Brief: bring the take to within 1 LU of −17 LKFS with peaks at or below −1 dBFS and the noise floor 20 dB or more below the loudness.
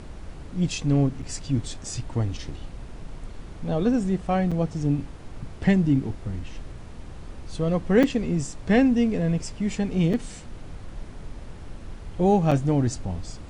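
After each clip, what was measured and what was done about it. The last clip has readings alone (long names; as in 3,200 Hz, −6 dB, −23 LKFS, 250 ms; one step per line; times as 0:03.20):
number of dropouts 5; longest dropout 5.7 ms; background noise floor −40 dBFS; target noise floor −45 dBFS; integrated loudness −24.5 LKFS; sample peak −7.5 dBFS; target loudness −17.0 LKFS
→ repair the gap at 0:01.22/0:04.51/0:08.03/0:10.13/0:12.51, 5.7 ms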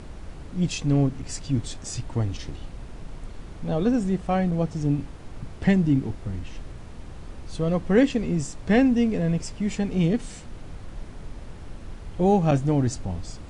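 number of dropouts 0; background noise floor −40 dBFS; target noise floor −45 dBFS
→ noise reduction from a noise print 6 dB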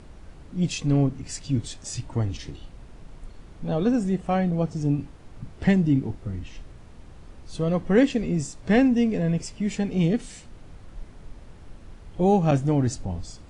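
background noise floor −46 dBFS; integrated loudness −24.5 LKFS; sample peak −7.5 dBFS; target loudness −17.0 LKFS
→ level +7.5 dB
brickwall limiter −1 dBFS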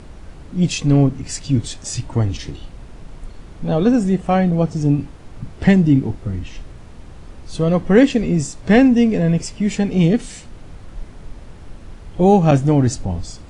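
integrated loudness −17.0 LKFS; sample peak −1.0 dBFS; background noise floor −39 dBFS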